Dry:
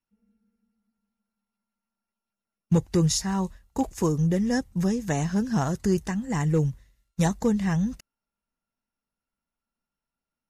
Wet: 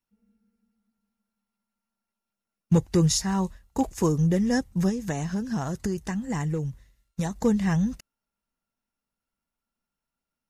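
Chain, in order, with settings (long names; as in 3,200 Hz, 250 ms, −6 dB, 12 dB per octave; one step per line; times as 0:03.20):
0:04.89–0:07.36: downward compressor, threshold −26 dBFS, peak gain reduction 8.5 dB
level +1 dB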